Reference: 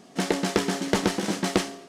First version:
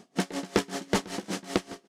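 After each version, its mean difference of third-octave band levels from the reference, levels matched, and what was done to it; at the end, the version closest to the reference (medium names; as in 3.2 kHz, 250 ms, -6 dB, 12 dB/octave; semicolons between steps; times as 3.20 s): 6.5 dB: delay 657 ms -19.5 dB; logarithmic tremolo 5.2 Hz, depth 22 dB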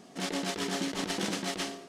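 4.5 dB: dynamic bell 3.3 kHz, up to +4 dB, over -42 dBFS, Q 1.1; compressor with a negative ratio -28 dBFS, ratio -1; trim -5 dB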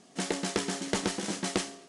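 2.5 dB: Chebyshev low-pass 11 kHz, order 8; treble shelf 5.2 kHz +8.5 dB; trim -6.5 dB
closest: third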